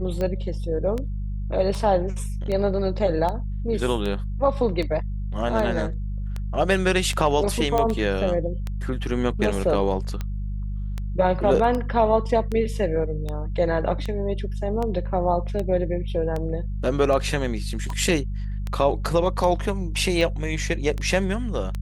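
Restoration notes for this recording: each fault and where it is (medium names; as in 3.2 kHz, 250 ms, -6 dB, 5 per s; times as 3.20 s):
hum 50 Hz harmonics 4 -28 dBFS
tick 78 rpm -16 dBFS
7.78 s: pop -10 dBFS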